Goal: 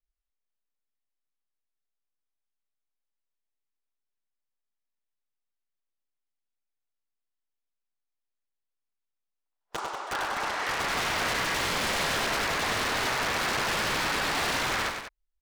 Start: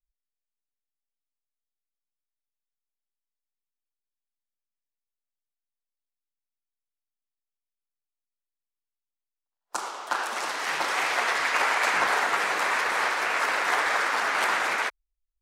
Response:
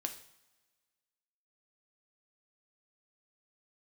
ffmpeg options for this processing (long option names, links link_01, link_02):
-af "aeval=exprs='(mod(11.2*val(0)+1,2)-1)/11.2':channel_layout=same,aemphasis=mode=reproduction:type=50kf,aecho=1:1:99.13|189.5:0.501|0.316"